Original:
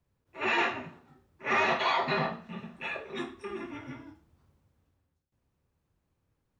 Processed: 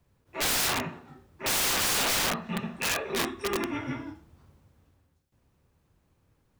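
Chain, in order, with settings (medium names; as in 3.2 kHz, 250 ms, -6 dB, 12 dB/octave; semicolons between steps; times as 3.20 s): dynamic bell 1.1 kHz, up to +6 dB, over -47 dBFS, Q 4.7; in parallel at -1.5 dB: peak limiter -27.5 dBFS, peak gain reduction 14 dB; on the sum: integer overflow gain 25 dB; trim +3.5 dB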